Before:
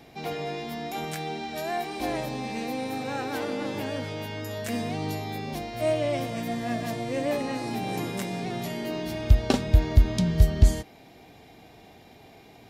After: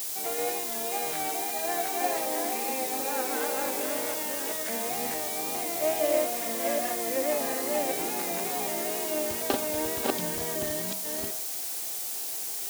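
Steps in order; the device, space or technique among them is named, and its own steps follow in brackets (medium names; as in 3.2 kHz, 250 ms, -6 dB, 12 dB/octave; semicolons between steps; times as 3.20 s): chunks repeated in reverse 377 ms, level -1 dB; wax cylinder (band-pass 270–2100 Hz; wow and flutter; white noise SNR 14 dB); tone controls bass -10 dB, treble +12 dB; de-hum 63.57 Hz, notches 28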